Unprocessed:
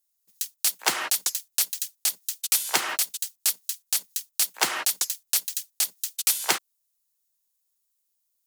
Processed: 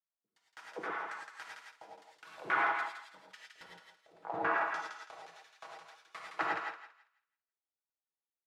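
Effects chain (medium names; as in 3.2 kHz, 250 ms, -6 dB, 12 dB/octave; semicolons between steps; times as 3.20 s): Doppler pass-by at 3.28 s, 41 m/s, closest 21 m; high-pass 75 Hz; peaking EQ 210 Hz -2.5 dB; hum notches 50/100/150/200 Hz; comb 6.2 ms, depth 53%; compressor with a negative ratio -31 dBFS, ratio -0.5; LFO low-pass saw down 3.6 Hz 340–1700 Hz; flange 1.4 Hz, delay 7.9 ms, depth 6.6 ms, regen +84%; thinning echo 165 ms, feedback 28%, high-pass 1 kHz, level -3.5 dB; gated-style reverb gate 130 ms rising, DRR -2 dB; trim +3 dB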